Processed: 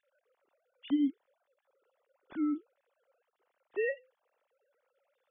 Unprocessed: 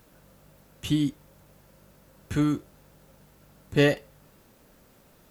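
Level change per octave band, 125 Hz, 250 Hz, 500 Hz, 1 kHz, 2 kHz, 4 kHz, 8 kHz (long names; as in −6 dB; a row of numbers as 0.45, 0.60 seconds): below −35 dB, −6.0 dB, −9.5 dB, −13.0 dB, −9.5 dB, below −15 dB, below −35 dB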